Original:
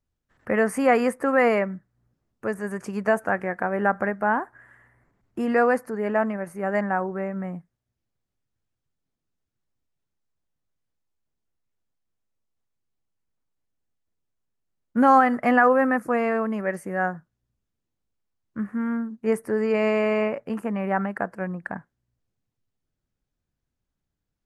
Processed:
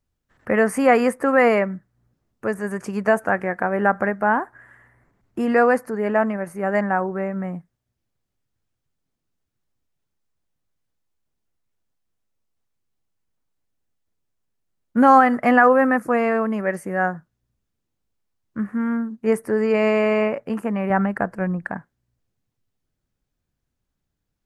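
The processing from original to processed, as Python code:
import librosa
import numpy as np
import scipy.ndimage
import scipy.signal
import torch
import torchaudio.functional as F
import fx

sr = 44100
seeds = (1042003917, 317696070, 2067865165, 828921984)

y = fx.low_shelf(x, sr, hz=130.0, db=11.5, at=(20.9, 21.66))
y = y * librosa.db_to_amplitude(3.5)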